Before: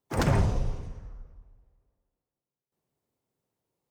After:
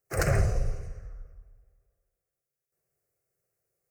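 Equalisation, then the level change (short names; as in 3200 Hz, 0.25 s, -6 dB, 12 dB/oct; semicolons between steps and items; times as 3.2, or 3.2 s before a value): high shelf 2400 Hz +6 dB; fixed phaser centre 930 Hz, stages 6; +1.5 dB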